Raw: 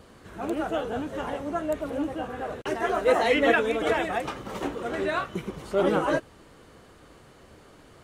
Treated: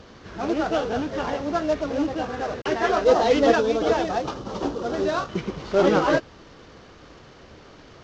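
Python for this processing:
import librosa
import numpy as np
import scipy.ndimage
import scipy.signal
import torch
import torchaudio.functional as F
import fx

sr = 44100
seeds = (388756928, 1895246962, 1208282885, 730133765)

y = fx.cvsd(x, sr, bps=32000)
y = fx.peak_eq(y, sr, hz=2100.0, db=-11.5, octaves=0.95, at=(3.04, 5.29))
y = y * 10.0 ** (5.0 / 20.0)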